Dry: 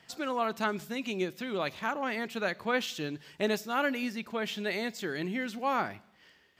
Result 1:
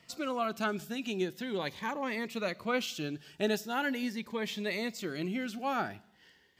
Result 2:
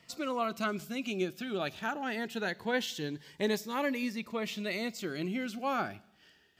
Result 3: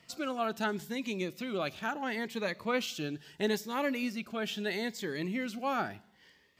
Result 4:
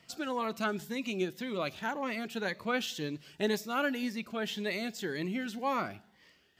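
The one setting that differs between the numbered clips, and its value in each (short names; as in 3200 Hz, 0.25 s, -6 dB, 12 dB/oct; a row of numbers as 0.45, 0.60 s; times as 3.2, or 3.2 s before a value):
cascading phaser, rate: 0.41, 0.22, 0.75, 1.9 Hz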